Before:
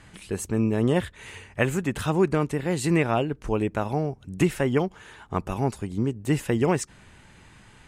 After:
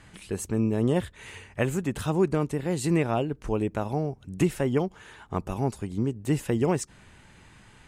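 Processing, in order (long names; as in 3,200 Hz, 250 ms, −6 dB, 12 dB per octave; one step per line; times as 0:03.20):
dynamic equaliser 1,900 Hz, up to −5 dB, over −39 dBFS, Q 0.76
level −1.5 dB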